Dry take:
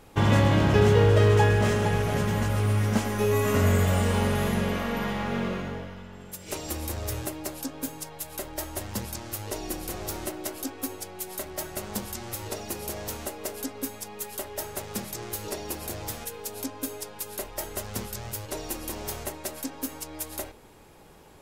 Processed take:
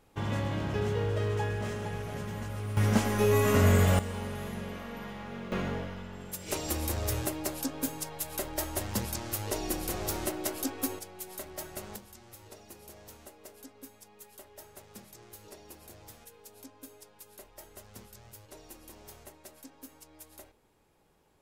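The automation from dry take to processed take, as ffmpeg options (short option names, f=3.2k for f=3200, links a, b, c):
-af "asetnsamples=n=441:p=0,asendcmd='2.77 volume volume -0.5dB;3.99 volume volume -12dB;5.52 volume volume 0.5dB;10.99 volume volume -6.5dB;11.96 volume volume -16dB',volume=-11.5dB"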